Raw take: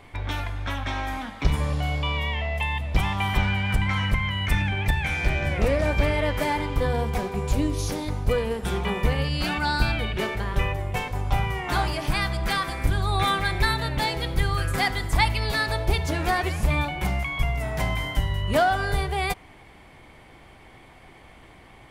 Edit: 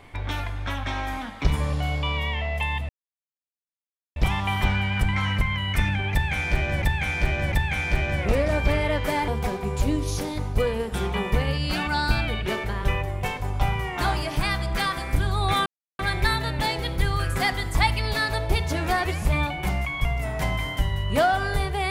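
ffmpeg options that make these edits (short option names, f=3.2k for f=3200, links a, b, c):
-filter_complex "[0:a]asplit=6[a][b][c][d][e][f];[a]atrim=end=2.89,asetpts=PTS-STARTPTS,afade=t=out:st=2.886:d=0.004:c=hsin,apad=pad_dur=1.27[g];[b]atrim=start=2.89:end=5.552,asetpts=PTS-STARTPTS,afade=t=in:d=0.004:c=hsin[h];[c]atrim=start=4.848:end=5.552[i];[d]atrim=start=4.848:end=6.612[j];[e]atrim=start=6.988:end=13.37,asetpts=PTS-STARTPTS,afade=t=out:st=6.378:d=0.004:c=hsin,apad=pad_dur=0.33[k];[f]atrim=start=13.37,asetpts=PTS-STARTPTS,afade=t=in:d=0.004:c=hsin[l];[g][h]concat=n=2:v=0:a=1[m];[m][i]acrossfade=d=0.004:c1=hsin:c2=hsin[n];[n][j]acrossfade=d=0.004:c1=hsin:c2=hsin[o];[k][l]concat=n=2:v=0:a=1[p];[o][p]acrossfade=d=0.004:c1=hsin:c2=hsin"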